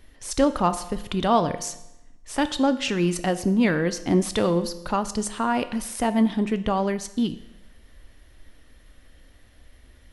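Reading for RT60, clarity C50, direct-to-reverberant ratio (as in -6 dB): 0.90 s, 14.0 dB, 11.0 dB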